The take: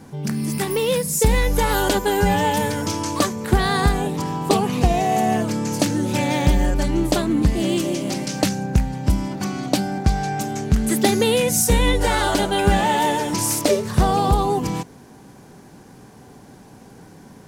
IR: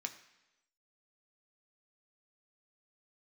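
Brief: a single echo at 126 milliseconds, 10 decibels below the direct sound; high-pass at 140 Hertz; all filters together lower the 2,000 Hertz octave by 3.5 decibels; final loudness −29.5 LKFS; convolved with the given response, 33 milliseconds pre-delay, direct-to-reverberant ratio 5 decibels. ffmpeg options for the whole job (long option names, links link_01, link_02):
-filter_complex "[0:a]highpass=140,equalizer=frequency=2000:width_type=o:gain=-4.5,aecho=1:1:126:0.316,asplit=2[link_01][link_02];[1:a]atrim=start_sample=2205,adelay=33[link_03];[link_02][link_03]afir=irnorm=-1:irlink=0,volume=-4dB[link_04];[link_01][link_04]amix=inputs=2:normalize=0,volume=-9dB"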